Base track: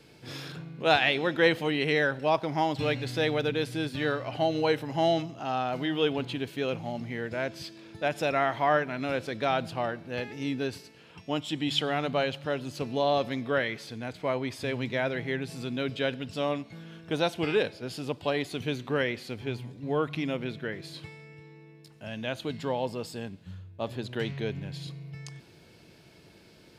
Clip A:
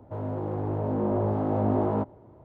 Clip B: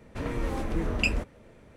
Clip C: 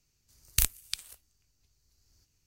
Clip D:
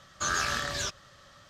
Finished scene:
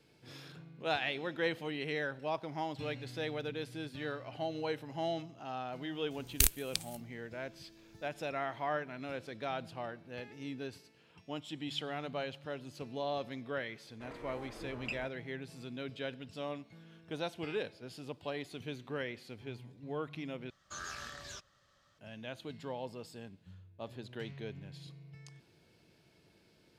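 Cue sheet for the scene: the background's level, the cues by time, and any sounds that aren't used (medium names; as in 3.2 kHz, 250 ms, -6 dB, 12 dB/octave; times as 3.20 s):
base track -11 dB
5.82 s: add C -1.5 dB
13.85 s: add B -12.5 dB + tone controls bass -14 dB, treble -8 dB
20.50 s: replace with D -15 dB
not used: A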